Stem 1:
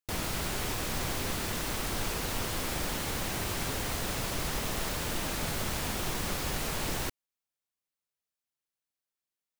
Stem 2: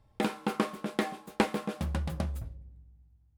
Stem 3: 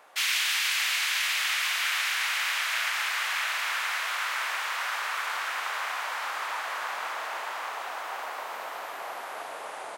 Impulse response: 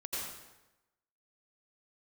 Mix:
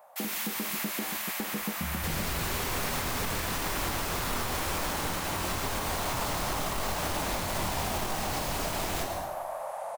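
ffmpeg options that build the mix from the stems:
-filter_complex "[0:a]flanger=delay=22.5:depth=2.8:speed=0.57,aeval=exprs='0.0891*sin(PI/2*2.51*val(0)/0.0891)':c=same,adelay=1950,volume=-9dB,asplit=2[a][b];[b]volume=-3dB[c];[1:a]equalizer=f=210:w=0.93:g=9,alimiter=limit=-21dB:level=0:latency=1:release=277,acrusher=bits=6:mix=0:aa=0.000001,volume=-1dB,asplit=2[d][e];[e]volume=-21dB[f];[2:a]firequalizer=gain_entry='entry(170,0);entry(320,-27);entry(580,6);entry(1400,-10);entry(2900,-15);entry(15000,7)':delay=0.05:min_phase=1,volume=-1.5dB,asplit=2[g][h];[h]volume=-5.5dB[i];[3:a]atrim=start_sample=2205[j];[c][f][i]amix=inputs=3:normalize=0[k];[k][j]afir=irnorm=-1:irlink=0[l];[a][d][g][l]amix=inputs=4:normalize=0,alimiter=limit=-21.5dB:level=0:latency=1:release=123"

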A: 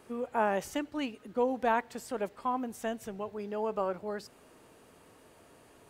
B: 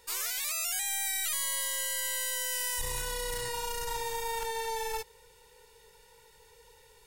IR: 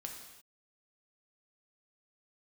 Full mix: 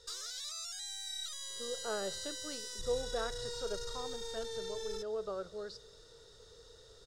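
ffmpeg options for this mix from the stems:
-filter_complex "[0:a]adelay=1500,volume=-4.5dB,asplit=2[a][b];[b]volume=-12.5dB[c];[1:a]bandreject=f=4.4k:w=7.3,acompressor=threshold=-39dB:ratio=6,volume=2dB[d];[2:a]atrim=start_sample=2205[e];[c][e]afir=irnorm=-1:irlink=0[f];[a][d][f]amix=inputs=3:normalize=0,firequalizer=gain_entry='entry(130,0);entry(250,-15);entry(430,1);entry(910,-16);entry(1300,-1);entry(2400,-19);entry(3900,8);entry(13000,-24)':delay=0.05:min_phase=1"

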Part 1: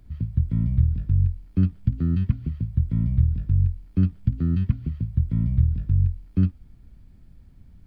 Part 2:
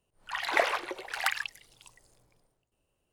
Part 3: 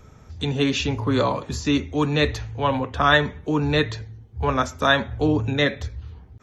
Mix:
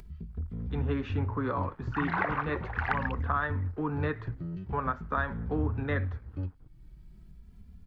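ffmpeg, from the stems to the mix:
-filter_complex "[0:a]asoftclip=type=tanh:threshold=-19dB,asplit=2[a][b];[b]adelay=2.6,afreqshift=0.41[c];[a][c]amix=inputs=2:normalize=1,volume=-7dB[d];[1:a]adelay=1650,volume=2dB[e];[2:a]aeval=exprs='0.841*(cos(1*acos(clip(val(0)/0.841,-1,1)))-cos(1*PI/2))+0.075*(cos(3*acos(clip(val(0)/0.841,-1,1)))-cos(3*PI/2))':c=same,aeval=exprs='sgn(val(0))*max(abs(val(0))-0.00473,0)':c=same,adelay=300,volume=-6dB[f];[e][f]amix=inputs=2:normalize=0,lowpass=f=1.4k:t=q:w=2,acompressor=threshold=-26dB:ratio=5,volume=0dB[g];[d][g]amix=inputs=2:normalize=0,acompressor=mode=upward:threshold=-40dB:ratio=2.5,equalizer=f=610:t=o:w=0.37:g=-4.5"

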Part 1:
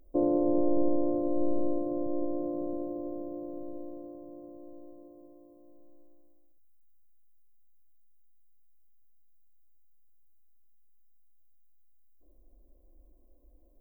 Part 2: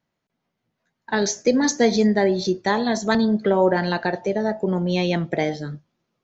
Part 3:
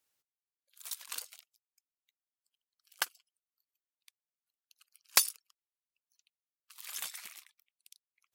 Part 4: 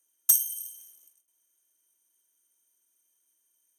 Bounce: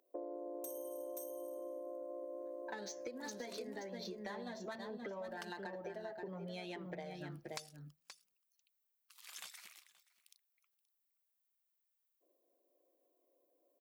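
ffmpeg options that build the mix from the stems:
-filter_complex "[0:a]highpass=f=400:w=0.5412,highpass=f=400:w=1.3066,volume=-4dB,asplit=2[a][b];[b]volume=-8dB[c];[1:a]adynamicsmooth=sensitivity=2:basefreq=3.2k,asplit=2[d][e];[e]adelay=6.4,afreqshift=0.78[f];[d][f]amix=inputs=2:normalize=1,adelay=1600,volume=-0.5dB,asplit=2[g][h];[h]volume=-18.5dB[i];[2:a]acrossover=split=7800[j][k];[k]acompressor=threshold=-49dB:ratio=4:attack=1:release=60[l];[j][l]amix=inputs=2:normalize=0,adelay=2400,volume=-7dB,asplit=2[m][n];[n]volume=-21.5dB[o];[3:a]asoftclip=type=tanh:threshold=-11.5dB,adelay=350,volume=-12dB,asplit=2[p][q];[q]volume=-6dB[r];[g][p]amix=inputs=2:normalize=0,highpass=f=510:p=1,acompressor=threshold=-35dB:ratio=4,volume=0dB[s];[c][i][o][r]amix=inputs=4:normalize=0,aecho=0:1:526:1[t];[a][m][s][t]amix=inputs=4:normalize=0,acompressor=threshold=-43dB:ratio=6"

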